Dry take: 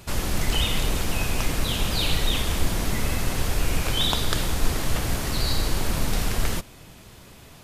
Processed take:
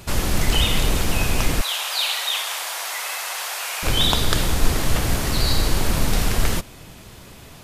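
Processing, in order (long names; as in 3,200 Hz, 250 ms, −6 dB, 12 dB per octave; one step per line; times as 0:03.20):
0:01.61–0:03.83: inverse Chebyshev high-pass filter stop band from 160 Hz, stop band 70 dB
level +4.5 dB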